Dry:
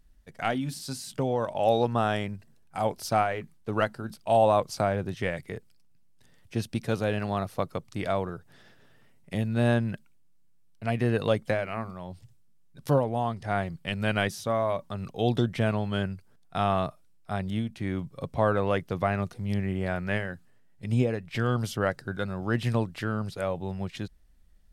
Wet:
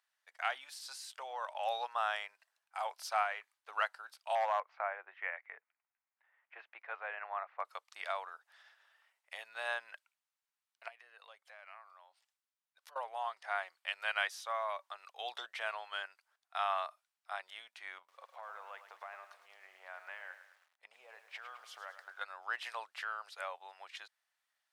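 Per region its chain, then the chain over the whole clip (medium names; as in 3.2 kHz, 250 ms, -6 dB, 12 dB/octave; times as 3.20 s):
4.35–7.65 s: Chebyshev band-pass 310–2200 Hz, order 3 + hard clipper -15 dBFS
10.88–12.96 s: compression 3:1, threshold -45 dBFS + transformer saturation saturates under 350 Hz
17.98–22.21 s: treble shelf 2.1 kHz -8.5 dB + compression 8:1, threshold -31 dBFS + bit-crushed delay 105 ms, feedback 55%, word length 9-bit, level -10.5 dB
whole clip: Bessel high-pass 1.4 kHz, order 6; tilt EQ -3.5 dB/octave; trim +1.5 dB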